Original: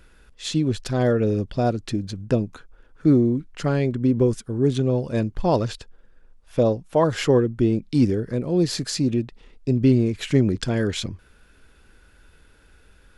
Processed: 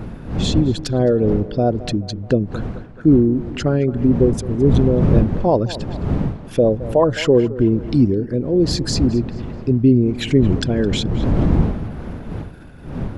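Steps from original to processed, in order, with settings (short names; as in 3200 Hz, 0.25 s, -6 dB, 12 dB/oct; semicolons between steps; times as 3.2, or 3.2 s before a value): formant sharpening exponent 1.5; wind noise 180 Hz -27 dBFS; on a send: tape echo 0.215 s, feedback 51%, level -15.5 dB, low-pass 2600 Hz; on the sum: mismatched tape noise reduction encoder only; gain +4 dB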